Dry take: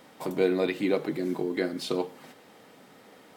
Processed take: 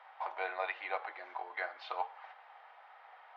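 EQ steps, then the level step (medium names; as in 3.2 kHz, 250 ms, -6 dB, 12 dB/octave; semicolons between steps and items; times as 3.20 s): elliptic high-pass 760 Hz, stop band 80 dB; distance through air 180 m; tape spacing loss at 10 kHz 41 dB; +8.0 dB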